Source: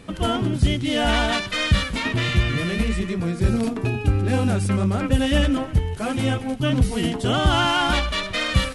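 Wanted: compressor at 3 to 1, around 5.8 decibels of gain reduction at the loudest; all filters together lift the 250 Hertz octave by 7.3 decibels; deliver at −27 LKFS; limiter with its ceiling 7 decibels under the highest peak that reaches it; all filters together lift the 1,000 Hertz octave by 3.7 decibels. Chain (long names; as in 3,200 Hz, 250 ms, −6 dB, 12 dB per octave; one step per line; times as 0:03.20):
parametric band 250 Hz +8.5 dB
parametric band 1,000 Hz +4.5 dB
downward compressor 3 to 1, threshold −18 dBFS
level −3.5 dB
brickwall limiter −18 dBFS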